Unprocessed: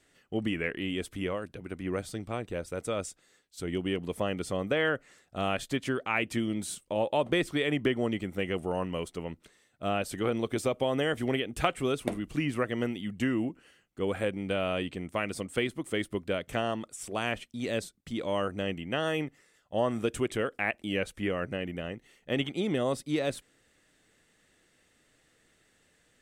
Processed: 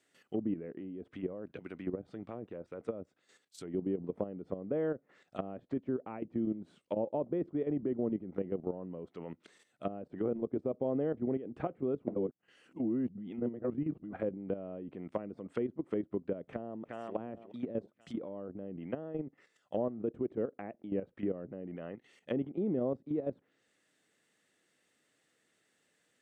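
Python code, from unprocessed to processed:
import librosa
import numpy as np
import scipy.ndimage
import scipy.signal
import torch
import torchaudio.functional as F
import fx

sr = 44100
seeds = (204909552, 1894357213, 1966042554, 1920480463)

y = fx.echo_throw(x, sr, start_s=16.49, length_s=0.66, ms=360, feedback_pct=35, wet_db=-8.5)
y = fx.edit(y, sr, fx.reverse_span(start_s=12.15, length_s=1.98), tone=tone)
y = fx.env_lowpass_down(y, sr, base_hz=470.0, full_db=-29.0)
y = scipy.signal.sosfilt(scipy.signal.butter(2, 170.0, 'highpass', fs=sr, output='sos'), y)
y = fx.level_steps(y, sr, step_db=11)
y = F.gain(torch.from_numpy(y), 1.5).numpy()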